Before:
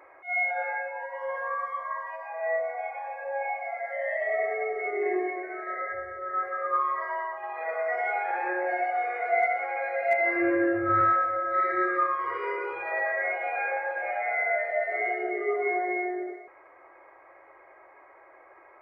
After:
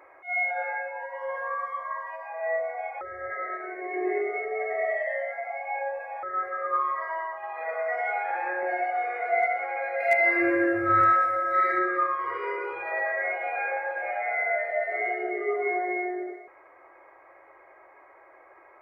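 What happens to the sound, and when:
3.01–6.23 reverse
6.91–8.63 notch 380 Hz, Q 5.1
10–11.79 high shelf 2400 Hz +11 dB

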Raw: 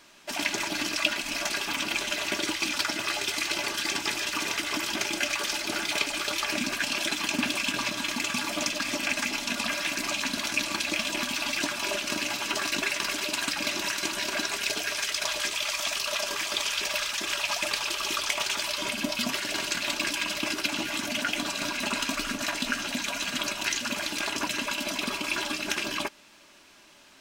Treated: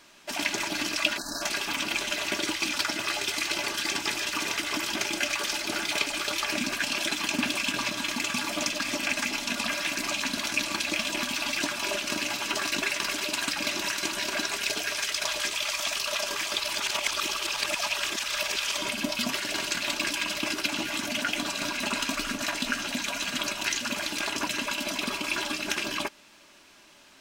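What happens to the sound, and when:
1.18–1.42 spectral delete 1800–3800 Hz
16.6–18.77 reverse

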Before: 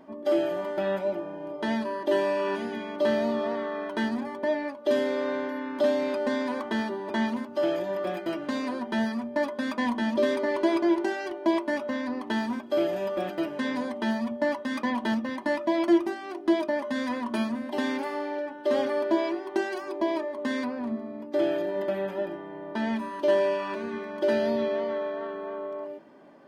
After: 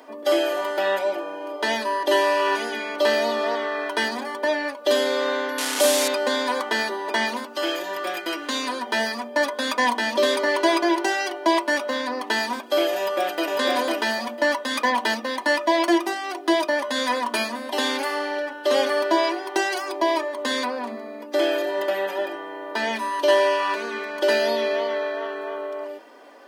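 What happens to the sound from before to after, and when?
5.58–6.08 delta modulation 64 kbps, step -28 dBFS
7.53–8.87 bell 630 Hz -7.5 dB
12.97–13.51 echo throw 0.5 s, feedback 20%, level -2 dB
whole clip: HPF 360 Hz 24 dB/oct; high shelf 2900 Hz +10 dB; comb 4.1 ms, depth 41%; gain +7 dB

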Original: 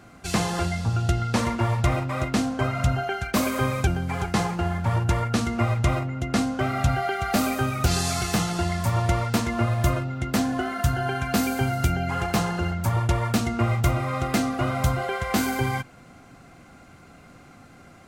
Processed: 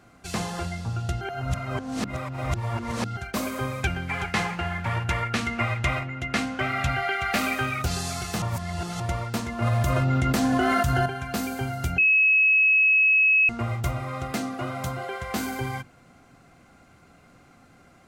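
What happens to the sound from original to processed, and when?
1.21–3.17 reverse
3.83–7.82 bell 2200 Hz +12 dB 1.5 oct
8.42–9 reverse
9.62–11.06 fast leveller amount 100%
11.98–13.49 bleep 2570 Hz -10.5 dBFS
14.32–15.14 HPF 120 Hz
whole clip: notches 50/100/150/200/250/300/350 Hz; gain -5 dB

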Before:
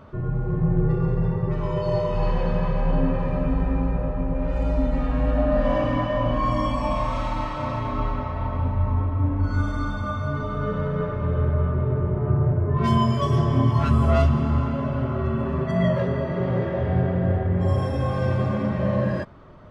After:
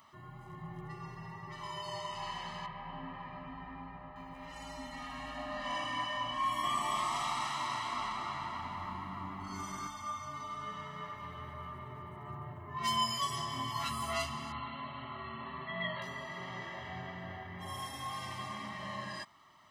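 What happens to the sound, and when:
2.66–4.16 air absorption 380 m
6.34–9.87 frequency-shifting echo 0.291 s, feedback 36%, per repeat +100 Hz, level -3.5 dB
14.52–16.02 brick-wall FIR low-pass 4500 Hz
whole clip: differentiator; comb 1 ms, depth 87%; gain +4.5 dB

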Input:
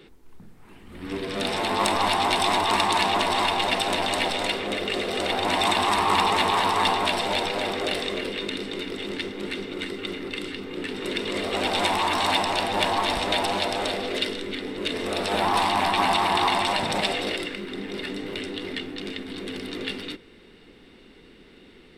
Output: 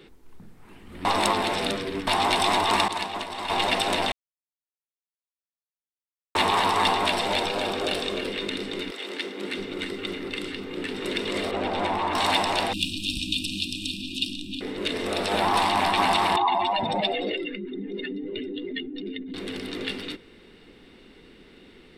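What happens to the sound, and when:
1.05–2.07 reverse
2.88–3.5 expander -16 dBFS
4.12–6.35 mute
7.45–8.26 notch 2000 Hz, Q 7.6
8.9–9.53 HPF 640 Hz -> 170 Hz
11.51–12.15 LPF 1200 Hz 6 dB/oct
12.73–14.61 brick-wall FIR band-stop 340–2400 Hz
16.36–19.34 spectral contrast raised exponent 2.1

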